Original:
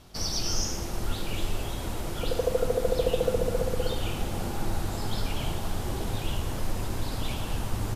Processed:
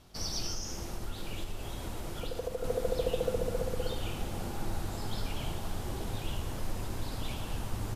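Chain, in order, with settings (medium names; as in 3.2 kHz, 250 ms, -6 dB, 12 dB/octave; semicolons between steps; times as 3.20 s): 0.46–2.64 s: compression, threshold -26 dBFS, peak gain reduction 6.5 dB; trim -5.5 dB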